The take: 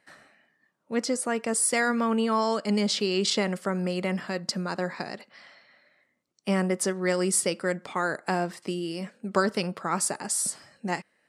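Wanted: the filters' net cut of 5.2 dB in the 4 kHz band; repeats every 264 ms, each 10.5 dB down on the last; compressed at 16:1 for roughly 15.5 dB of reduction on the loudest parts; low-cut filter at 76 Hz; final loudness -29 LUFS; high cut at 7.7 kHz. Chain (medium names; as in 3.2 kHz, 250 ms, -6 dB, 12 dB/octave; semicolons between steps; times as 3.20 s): high-pass 76 Hz; low-pass 7.7 kHz; peaking EQ 4 kHz -6.5 dB; compression 16:1, threshold -35 dBFS; feedback delay 264 ms, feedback 30%, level -10.5 dB; trim +11 dB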